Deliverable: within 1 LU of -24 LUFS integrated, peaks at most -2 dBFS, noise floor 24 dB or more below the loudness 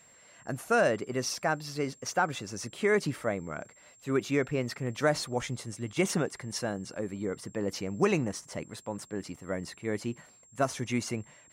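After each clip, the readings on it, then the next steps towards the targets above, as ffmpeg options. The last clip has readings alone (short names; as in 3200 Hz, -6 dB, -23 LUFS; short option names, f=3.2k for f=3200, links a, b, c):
steady tone 7500 Hz; tone level -57 dBFS; loudness -32.0 LUFS; peak -13.5 dBFS; loudness target -24.0 LUFS
-> -af "bandreject=f=7.5k:w=30"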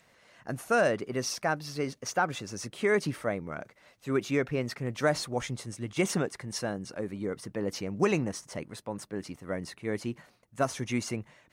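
steady tone none; loudness -32.0 LUFS; peak -13.5 dBFS; loudness target -24.0 LUFS
-> -af "volume=8dB"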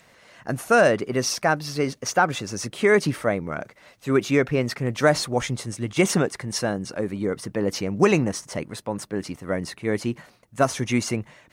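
loudness -24.0 LUFS; peak -5.5 dBFS; noise floor -56 dBFS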